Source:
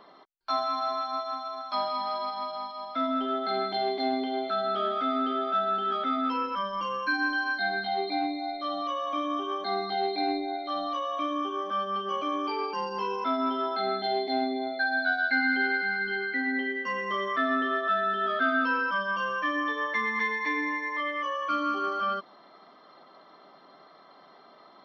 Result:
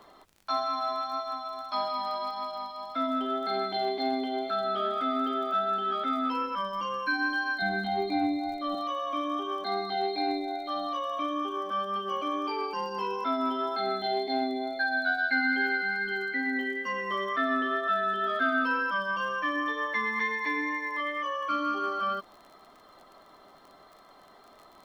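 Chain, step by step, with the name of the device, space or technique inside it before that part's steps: 7.62–8.75 tone controls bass +15 dB, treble -6 dB; vinyl LP (wow and flutter 11 cents; crackle 36/s -42 dBFS; pink noise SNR 40 dB); gain -1 dB

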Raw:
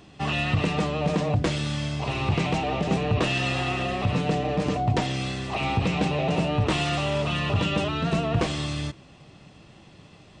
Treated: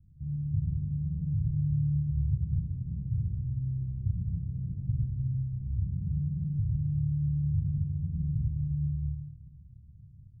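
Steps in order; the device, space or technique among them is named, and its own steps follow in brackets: club heard from the street (limiter -18.5 dBFS, peak gain reduction 5 dB; LPF 120 Hz 24 dB/oct; reverb RT60 1.4 s, pre-delay 35 ms, DRR -1 dB)

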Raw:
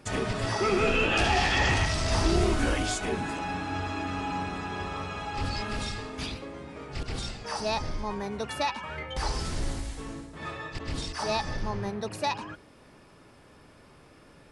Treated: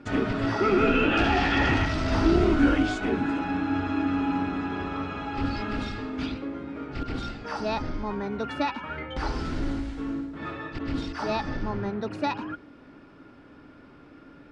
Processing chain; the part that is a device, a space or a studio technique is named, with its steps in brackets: inside a cardboard box (LPF 3500 Hz 12 dB/oct; small resonant body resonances 280/1400 Hz, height 12 dB, ringing for 40 ms)

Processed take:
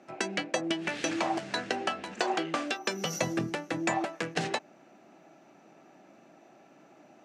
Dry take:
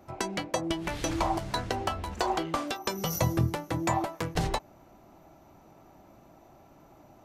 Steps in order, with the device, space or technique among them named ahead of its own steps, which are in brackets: television speaker (speaker cabinet 180–8700 Hz, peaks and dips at 990 Hz -7 dB, 1700 Hz +6 dB, 2600 Hz +6 dB)

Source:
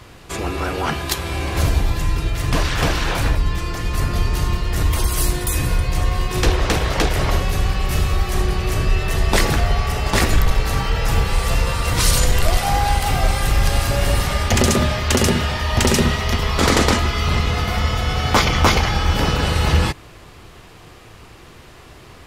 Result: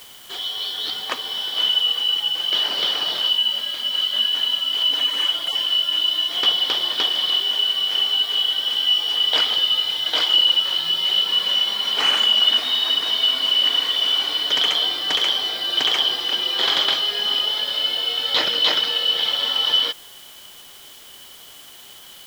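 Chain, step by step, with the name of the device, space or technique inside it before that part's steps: split-band scrambled radio (four-band scrambler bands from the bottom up 3412; BPF 350–2900 Hz; white noise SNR 24 dB)

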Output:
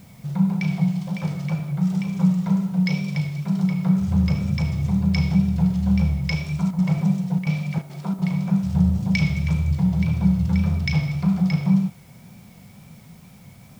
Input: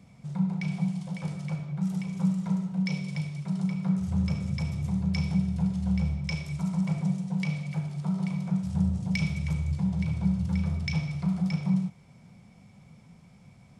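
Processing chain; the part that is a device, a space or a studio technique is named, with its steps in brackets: worn cassette (LPF 6400 Hz 12 dB/oct; wow and flutter; level dips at 6.71/7.39/7.82/8.14, 75 ms -7 dB; white noise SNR 36 dB); 7.78–8.19 resonant low shelf 190 Hz -7.5 dB, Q 1.5; gain +7.5 dB

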